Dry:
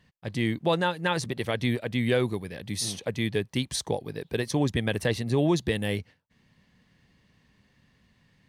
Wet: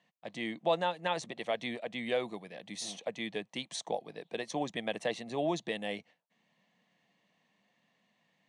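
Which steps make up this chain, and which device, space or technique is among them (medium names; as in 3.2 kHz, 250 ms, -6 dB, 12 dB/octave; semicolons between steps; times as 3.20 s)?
television speaker (cabinet simulation 210–7700 Hz, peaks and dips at 260 Hz -8 dB, 390 Hz -8 dB, 690 Hz +8 dB, 1.5 kHz -7 dB, 4.9 kHz -8 dB); trim -5 dB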